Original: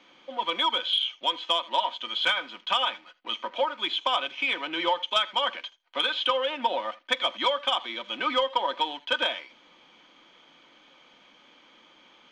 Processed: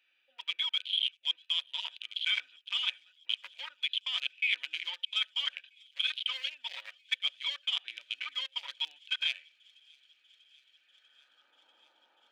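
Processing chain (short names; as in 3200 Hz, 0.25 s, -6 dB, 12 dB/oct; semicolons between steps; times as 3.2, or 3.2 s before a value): Wiener smoothing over 41 samples; HPF 170 Hz; bell 710 Hz -6 dB 2.7 oct; reverse; compressor 6:1, threshold -38 dBFS, peak gain reduction 14.5 dB; reverse; high-pass sweep 2400 Hz -> 960 Hz, 10.73–11.66; thin delay 0.642 s, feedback 79%, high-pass 4600 Hz, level -22 dB; gain +5 dB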